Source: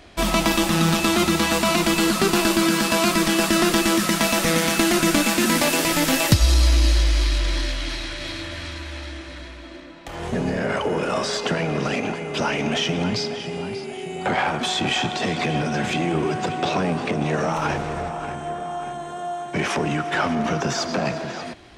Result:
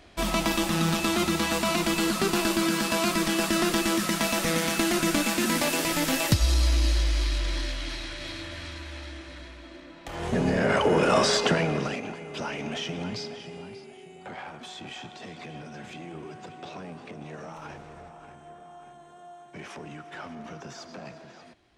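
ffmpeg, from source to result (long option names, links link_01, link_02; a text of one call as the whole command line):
ffmpeg -i in.wav -af "volume=3dB,afade=type=in:start_time=9.77:duration=1.47:silence=0.354813,afade=type=out:start_time=11.24:duration=0.76:silence=0.223872,afade=type=out:start_time=13.25:duration=1:silence=0.398107" out.wav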